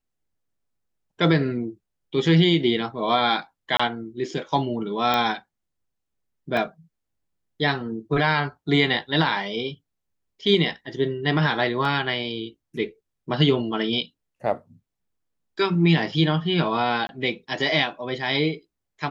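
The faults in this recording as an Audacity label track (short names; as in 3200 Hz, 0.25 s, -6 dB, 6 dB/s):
3.770000	3.790000	gap 25 ms
5.140000	5.140000	pop -9 dBFS
6.570000	6.570000	gap 3.1 ms
11.850000	11.850000	gap 2.1 ms
17.070000	17.090000	gap 21 ms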